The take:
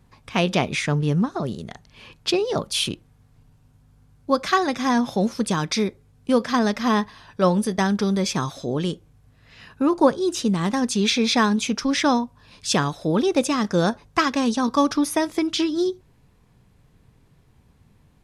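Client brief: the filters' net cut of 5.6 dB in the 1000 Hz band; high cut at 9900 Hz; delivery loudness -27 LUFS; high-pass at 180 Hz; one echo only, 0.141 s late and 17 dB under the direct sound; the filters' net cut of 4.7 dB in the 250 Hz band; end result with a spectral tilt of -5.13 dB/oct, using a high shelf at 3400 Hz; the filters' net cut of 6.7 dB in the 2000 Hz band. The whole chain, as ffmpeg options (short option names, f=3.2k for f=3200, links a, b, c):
-af "highpass=180,lowpass=9.9k,equalizer=f=250:t=o:g=-4,equalizer=f=1k:t=o:g=-5,equalizer=f=2k:t=o:g=-4.5,highshelf=f=3.4k:g=-8,aecho=1:1:141:0.141,volume=-0.5dB"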